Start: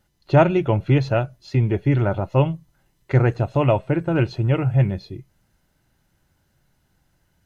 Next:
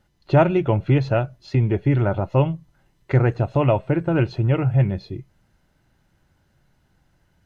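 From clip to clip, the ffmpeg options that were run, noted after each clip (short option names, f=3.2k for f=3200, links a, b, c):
-filter_complex "[0:a]lowpass=f=3.9k:p=1,asplit=2[a][b];[b]acompressor=threshold=-23dB:ratio=6,volume=-1.5dB[c];[a][c]amix=inputs=2:normalize=0,volume=-2.5dB"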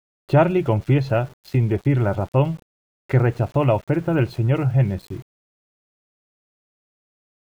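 -af "aeval=exprs='val(0)*gte(abs(val(0)),0.00891)':c=same"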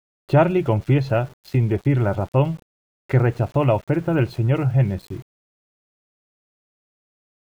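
-af anull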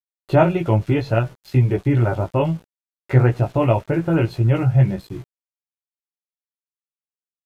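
-af "flanger=delay=16:depth=2.5:speed=0.62,aresample=32000,aresample=44100,volume=4dB"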